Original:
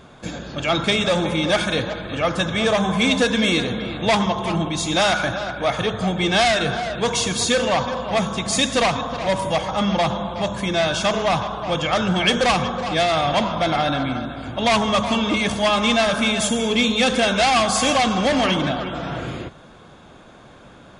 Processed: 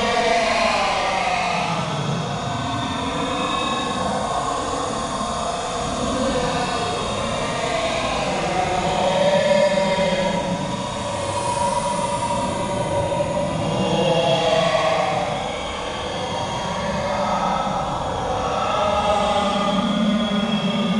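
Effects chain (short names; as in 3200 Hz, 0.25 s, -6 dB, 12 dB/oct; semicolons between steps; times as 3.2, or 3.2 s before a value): compressor, threshold -22 dBFS, peak gain reduction 9 dB; diffused feedback echo 0.602 s, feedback 40%, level -12 dB; Paulstretch 20×, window 0.05 s, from 8.82; gain +4.5 dB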